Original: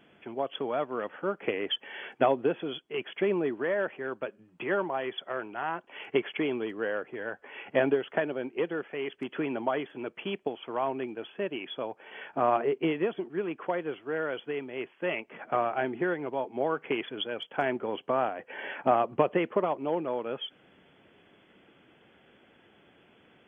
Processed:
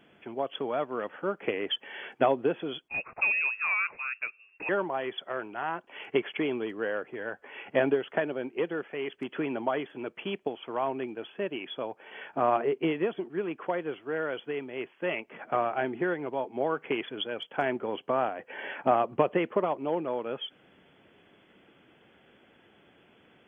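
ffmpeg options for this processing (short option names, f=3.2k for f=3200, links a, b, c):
-filter_complex "[0:a]asettb=1/sr,asplit=3[a][b][c];[a]atrim=end=2.884[d];[b]atrim=start=2.88:end=4.69,asetpts=PTS-STARTPTS,afade=t=in:d=0.004:c=qsin,afade=t=out:st=1.806:d=0.004:c=qsin,lowpass=f=2.5k:t=q:w=0.5098,lowpass=f=2.5k:t=q:w=0.6013,lowpass=f=2.5k:t=q:w=0.9,lowpass=f=2.5k:t=q:w=2.563,afreqshift=-2900[e];[c]atrim=start=4.686[f];[d][e]acrossfade=d=0.004:c1=hsin:c2=qsin[g];[g][f]acrossfade=d=0.004:c1=qsin:c2=hsin"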